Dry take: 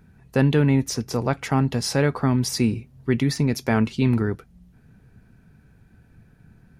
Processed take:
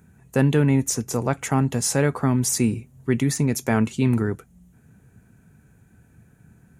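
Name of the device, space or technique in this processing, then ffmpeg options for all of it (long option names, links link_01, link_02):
budget condenser microphone: -af "highpass=61,highshelf=frequency=5900:width_type=q:width=3:gain=6"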